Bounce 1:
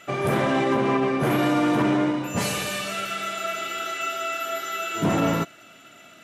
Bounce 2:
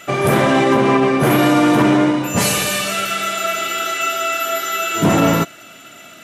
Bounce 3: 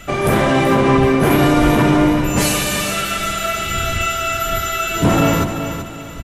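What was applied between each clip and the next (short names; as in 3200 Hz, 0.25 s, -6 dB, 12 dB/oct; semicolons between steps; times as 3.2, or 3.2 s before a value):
high shelf 6800 Hz +7 dB; gain +8 dB
octaver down 1 oct, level -5 dB; wind noise 100 Hz -28 dBFS; on a send: feedback echo 0.381 s, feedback 35%, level -9 dB; on the sum: gain -1 dB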